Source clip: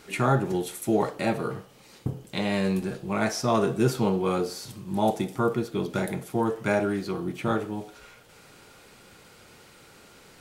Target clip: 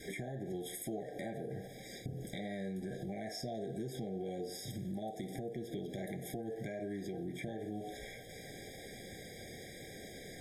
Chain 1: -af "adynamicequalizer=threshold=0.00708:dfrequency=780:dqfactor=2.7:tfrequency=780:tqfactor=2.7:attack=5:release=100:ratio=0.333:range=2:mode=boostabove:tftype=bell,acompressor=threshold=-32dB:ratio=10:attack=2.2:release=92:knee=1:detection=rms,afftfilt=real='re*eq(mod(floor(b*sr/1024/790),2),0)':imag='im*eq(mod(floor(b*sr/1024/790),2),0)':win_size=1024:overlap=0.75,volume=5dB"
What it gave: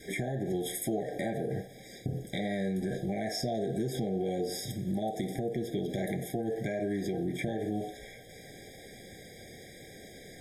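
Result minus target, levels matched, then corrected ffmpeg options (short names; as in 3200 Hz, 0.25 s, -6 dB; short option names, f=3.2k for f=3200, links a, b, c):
compressor: peak gain reduction -8.5 dB
-af "adynamicequalizer=threshold=0.00708:dfrequency=780:dqfactor=2.7:tfrequency=780:tqfactor=2.7:attack=5:release=100:ratio=0.333:range=2:mode=boostabove:tftype=bell,acompressor=threshold=-41.5dB:ratio=10:attack=2.2:release=92:knee=1:detection=rms,afftfilt=real='re*eq(mod(floor(b*sr/1024/790),2),0)':imag='im*eq(mod(floor(b*sr/1024/790),2),0)':win_size=1024:overlap=0.75,volume=5dB"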